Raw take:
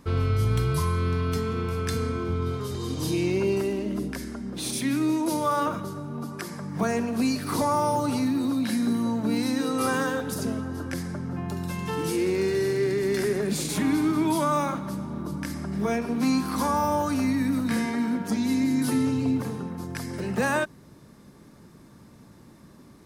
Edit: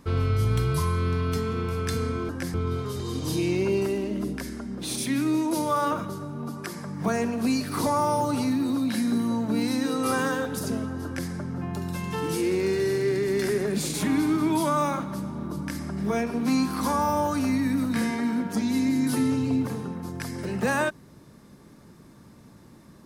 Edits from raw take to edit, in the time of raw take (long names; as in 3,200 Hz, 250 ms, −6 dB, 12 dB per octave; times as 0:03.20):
0:10.80–0:11.05: duplicate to 0:02.29